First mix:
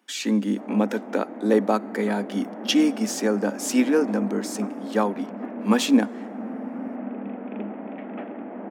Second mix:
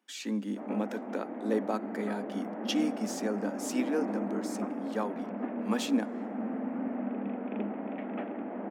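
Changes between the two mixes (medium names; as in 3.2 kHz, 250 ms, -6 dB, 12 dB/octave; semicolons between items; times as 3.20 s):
speech -10.5 dB; background: send -10.0 dB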